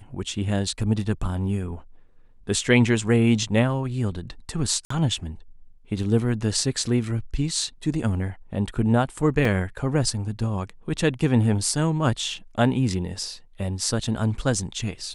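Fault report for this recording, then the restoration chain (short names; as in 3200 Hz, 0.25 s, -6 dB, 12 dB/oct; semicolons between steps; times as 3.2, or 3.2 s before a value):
4.85–4.9 gap 54 ms
9.45 gap 3 ms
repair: interpolate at 4.85, 54 ms; interpolate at 9.45, 3 ms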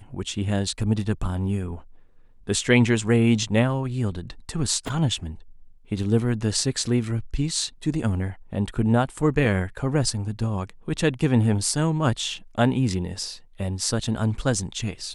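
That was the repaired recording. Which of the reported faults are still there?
none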